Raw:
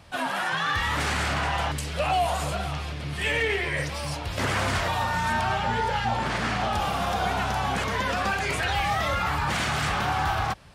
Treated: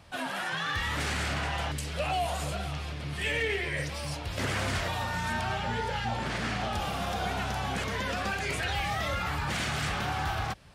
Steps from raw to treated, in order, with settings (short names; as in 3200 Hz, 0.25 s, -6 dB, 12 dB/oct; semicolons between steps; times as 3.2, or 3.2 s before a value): dynamic EQ 1000 Hz, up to -5 dB, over -39 dBFS, Q 1.3; gain -3.5 dB